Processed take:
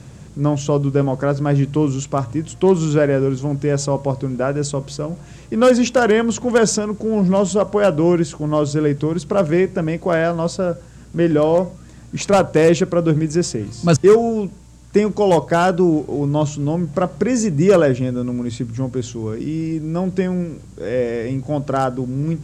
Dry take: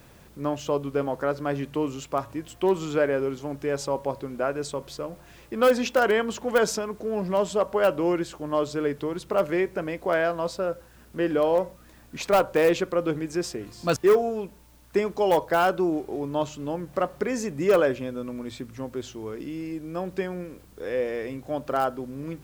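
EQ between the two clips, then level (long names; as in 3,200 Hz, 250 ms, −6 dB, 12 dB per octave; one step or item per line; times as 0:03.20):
low-pass with resonance 7,400 Hz, resonance Q 2.9
parametric band 130 Hz +15 dB 2.1 octaves
+3.5 dB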